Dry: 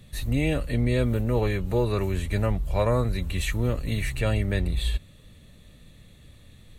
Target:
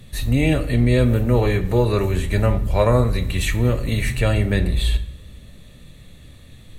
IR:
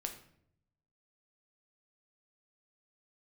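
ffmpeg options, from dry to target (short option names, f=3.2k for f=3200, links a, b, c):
-filter_complex "[0:a]asplit=2[a][b];[1:a]atrim=start_sample=2205,asetrate=37044,aresample=44100[c];[b][c]afir=irnorm=-1:irlink=0,volume=1.5dB[d];[a][d]amix=inputs=2:normalize=0"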